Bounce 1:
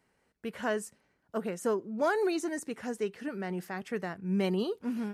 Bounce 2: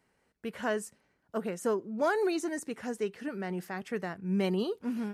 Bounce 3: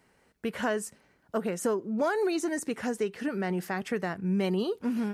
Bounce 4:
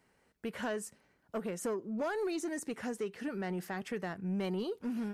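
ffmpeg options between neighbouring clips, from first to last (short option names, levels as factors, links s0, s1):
-af anull
-af "acompressor=threshold=0.0178:ratio=2.5,volume=2.37"
-af "asoftclip=type=tanh:threshold=0.0794,volume=0.531"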